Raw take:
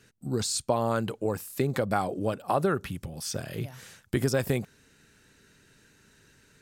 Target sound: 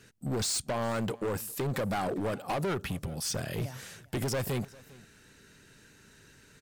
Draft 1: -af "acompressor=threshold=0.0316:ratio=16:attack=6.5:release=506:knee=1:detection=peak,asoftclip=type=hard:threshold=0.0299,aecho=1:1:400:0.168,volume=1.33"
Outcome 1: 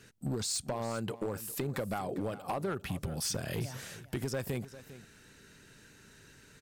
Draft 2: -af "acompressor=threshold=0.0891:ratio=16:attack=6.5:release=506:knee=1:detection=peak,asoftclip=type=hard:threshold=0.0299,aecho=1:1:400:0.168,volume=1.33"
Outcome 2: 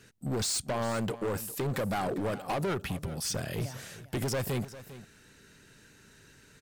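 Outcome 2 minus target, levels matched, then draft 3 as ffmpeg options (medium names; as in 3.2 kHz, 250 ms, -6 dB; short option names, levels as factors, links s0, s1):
echo-to-direct +7 dB
-af "acompressor=threshold=0.0891:ratio=16:attack=6.5:release=506:knee=1:detection=peak,asoftclip=type=hard:threshold=0.0299,aecho=1:1:400:0.075,volume=1.33"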